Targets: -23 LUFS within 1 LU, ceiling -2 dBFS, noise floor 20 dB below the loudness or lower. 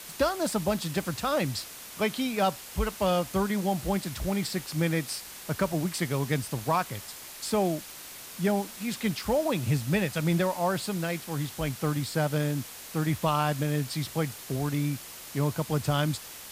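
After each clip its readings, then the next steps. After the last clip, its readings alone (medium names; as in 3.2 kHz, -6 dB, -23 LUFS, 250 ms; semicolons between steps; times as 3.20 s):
noise floor -44 dBFS; noise floor target -50 dBFS; loudness -29.5 LUFS; peak level -12.0 dBFS; loudness target -23.0 LUFS
-> noise reduction 6 dB, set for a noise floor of -44 dBFS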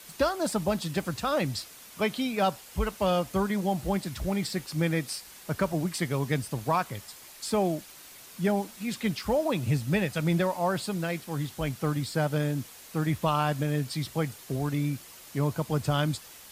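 noise floor -49 dBFS; noise floor target -50 dBFS
-> noise reduction 6 dB, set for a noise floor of -49 dBFS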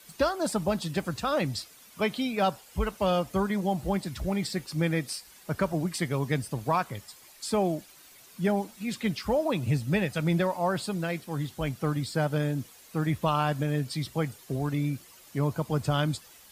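noise floor -53 dBFS; loudness -29.5 LUFS; peak level -12.0 dBFS; loudness target -23.0 LUFS
-> trim +6.5 dB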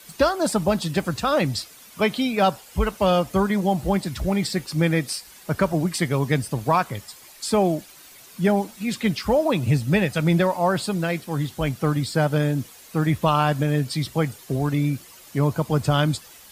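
loudness -23.0 LUFS; peak level -5.5 dBFS; noise floor -47 dBFS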